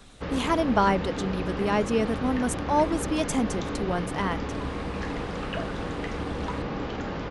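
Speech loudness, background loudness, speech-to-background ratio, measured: -27.5 LUFS, -32.5 LUFS, 5.0 dB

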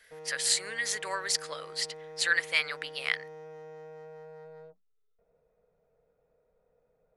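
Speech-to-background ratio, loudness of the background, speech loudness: 16.5 dB, -46.5 LUFS, -30.0 LUFS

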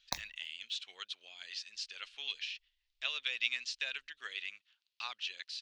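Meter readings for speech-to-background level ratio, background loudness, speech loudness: 3.0 dB, -42.5 LUFS, -39.5 LUFS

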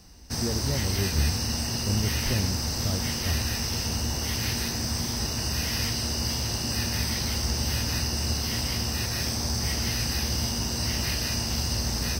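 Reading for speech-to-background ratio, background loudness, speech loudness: -5.5 dB, -27.0 LUFS, -32.5 LUFS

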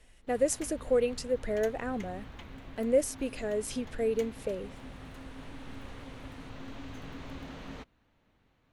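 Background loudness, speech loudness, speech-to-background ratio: -47.0 LUFS, -31.5 LUFS, 15.5 dB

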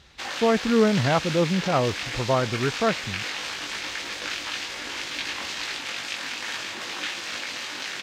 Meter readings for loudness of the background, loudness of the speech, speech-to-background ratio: -30.0 LUFS, -24.0 LUFS, 6.0 dB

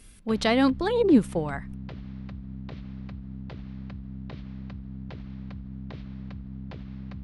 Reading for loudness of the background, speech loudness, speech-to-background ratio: -40.0 LUFS, -23.5 LUFS, 16.5 dB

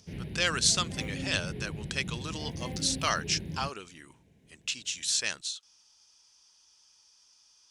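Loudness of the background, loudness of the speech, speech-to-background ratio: -39.0 LUFS, -30.5 LUFS, 8.5 dB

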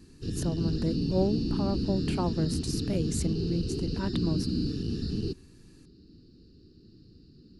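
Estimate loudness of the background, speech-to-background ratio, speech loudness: -31.5 LUFS, -1.0 dB, -32.5 LUFS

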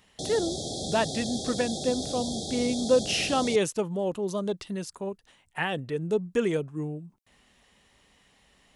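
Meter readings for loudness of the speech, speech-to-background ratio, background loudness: -29.0 LUFS, 4.5 dB, -33.5 LUFS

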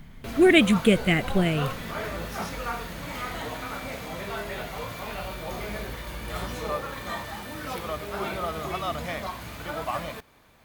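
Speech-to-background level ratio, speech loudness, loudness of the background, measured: 12.5 dB, -21.0 LUFS, -33.5 LUFS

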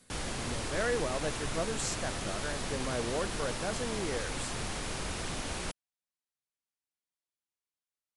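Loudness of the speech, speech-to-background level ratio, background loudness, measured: -37.0 LUFS, -0.5 dB, -36.5 LUFS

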